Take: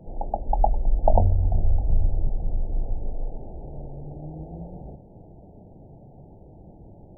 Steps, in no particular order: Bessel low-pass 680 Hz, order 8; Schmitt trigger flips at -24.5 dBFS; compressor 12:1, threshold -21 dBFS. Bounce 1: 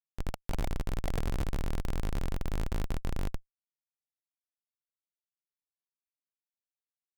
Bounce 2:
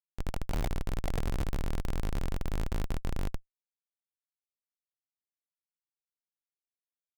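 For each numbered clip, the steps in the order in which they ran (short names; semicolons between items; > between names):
compressor > Bessel low-pass > Schmitt trigger; Bessel low-pass > compressor > Schmitt trigger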